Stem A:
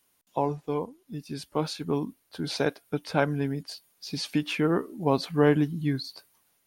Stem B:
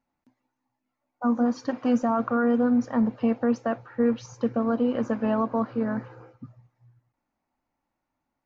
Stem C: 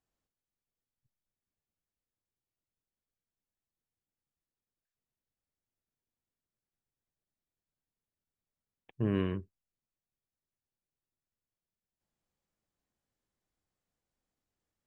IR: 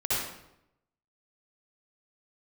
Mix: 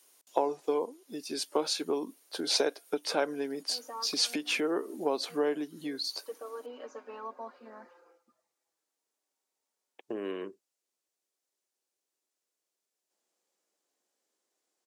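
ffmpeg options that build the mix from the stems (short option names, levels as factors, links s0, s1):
-filter_complex "[0:a]volume=1.12,asplit=2[s0][s1];[1:a]asplit=2[s2][s3];[s3]adelay=5.1,afreqshift=-0.36[s4];[s2][s4]amix=inputs=2:normalize=1,adelay=1850,volume=0.299[s5];[2:a]adelay=1100,volume=1.33[s6];[s1]apad=whole_len=454527[s7];[s5][s7]sidechaincompress=threshold=0.00708:ratio=8:attack=16:release=177[s8];[s0][s6]amix=inputs=2:normalize=0,lowshelf=f=490:g=12,acompressor=threshold=0.0891:ratio=8,volume=1[s9];[s8][s9]amix=inputs=2:normalize=0,highpass=f=370:w=0.5412,highpass=f=370:w=1.3066,equalizer=f=7000:t=o:w=1.8:g=9.5"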